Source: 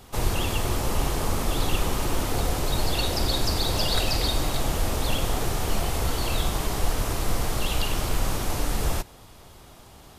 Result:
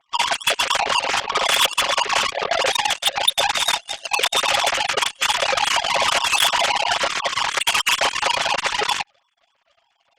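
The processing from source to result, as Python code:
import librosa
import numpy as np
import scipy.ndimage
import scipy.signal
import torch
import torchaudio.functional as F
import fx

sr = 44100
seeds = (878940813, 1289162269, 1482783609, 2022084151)

y = fx.sine_speech(x, sr)
y = y + 0.62 * np.pad(y, (int(7.3 * sr / 1000.0), 0))[:len(y)]
y = fx.over_compress(y, sr, threshold_db=-23.0, ratio=-0.5)
y = fx.cheby_harmonics(y, sr, harmonics=(4, 5, 7), levels_db=(-42, -14, -11), full_scale_db=-10.5)
y = fx.high_shelf(y, sr, hz=2400.0, db=11.5)
y = y * librosa.db_to_amplitude(-1.0)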